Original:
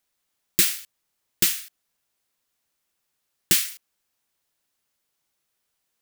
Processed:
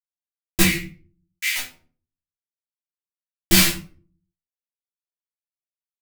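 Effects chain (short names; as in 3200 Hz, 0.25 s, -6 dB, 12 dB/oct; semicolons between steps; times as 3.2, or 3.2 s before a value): tilt -2.5 dB/oct; fuzz box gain 35 dB, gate -42 dBFS; 0.62–1.56 ladder high-pass 2000 Hz, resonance 80%; doubler 12 ms -3 dB; shoebox room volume 300 m³, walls furnished, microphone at 2.9 m; gain -4.5 dB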